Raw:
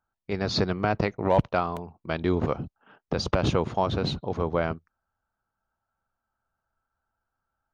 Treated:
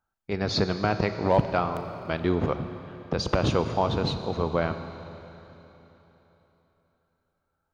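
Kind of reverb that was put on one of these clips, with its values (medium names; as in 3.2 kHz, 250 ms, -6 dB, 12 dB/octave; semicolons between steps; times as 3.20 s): Schroeder reverb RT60 3.6 s, combs from 28 ms, DRR 9 dB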